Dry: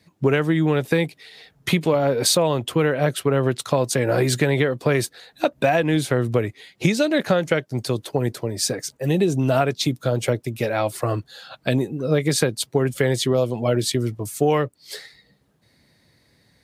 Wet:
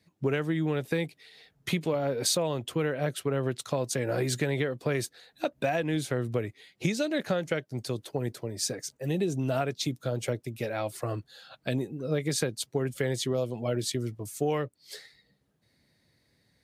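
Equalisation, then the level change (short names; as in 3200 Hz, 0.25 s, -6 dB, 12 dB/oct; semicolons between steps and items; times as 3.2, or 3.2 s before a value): dynamic EQ 6400 Hz, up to +3 dB, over -41 dBFS, Q 2.2; bell 1000 Hz -2.5 dB; -9.0 dB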